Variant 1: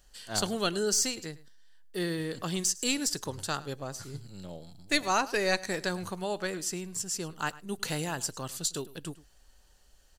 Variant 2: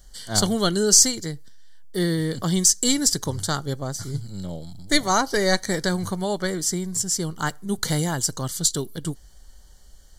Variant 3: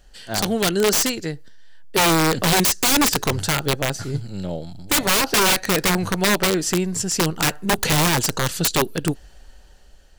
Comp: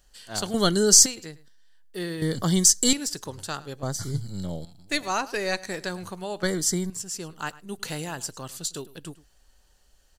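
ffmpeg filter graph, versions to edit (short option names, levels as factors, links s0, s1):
-filter_complex "[1:a]asplit=4[s0][s1][s2][s3];[0:a]asplit=5[s4][s5][s6][s7][s8];[s4]atrim=end=0.542[s9];[s0]atrim=start=0.538:end=1.062[s10];[s5]atrim=start=1.058:end=2.222[s11];[s1]atrim=start=2.218:end=2.932[s12];[s6]atrim=start=2.928:end=3.832[s13];[s2]atrim=start=3.828:end=4.652[s14];[s7]atrim=start=4.648:end=6.432[s15];[s3]atrim=start=6.428:end=6.902[s16];[s8]atrim=start=6.898[s17];[s9][s10]acrossfade=d=0.004:c1=hsin:c2=hsin[s18];[s18][s11]acrossfade=d=0.004:c1=hsin:c2=hsin[s19];[s19][s12]acrossfade=d=0.004:c1=hsin:c2=hsin[s20];[s20][s13]acrossfade=d=0.004:c1=hsin:c2=hsin[s21];[s21][s14]acrossfade=d=0.004:c1=hsin:c2=hsin[s22];[s22][s15]acrossfade=d=0.004:c1=hsin:c2=hsin[s23];[s23][s16]acrossfade=d=0.004:c1=hsin:c2=hsin[s24];[s24][s17]acrossfade=d=0.004:c1=hsin:c2=hsin"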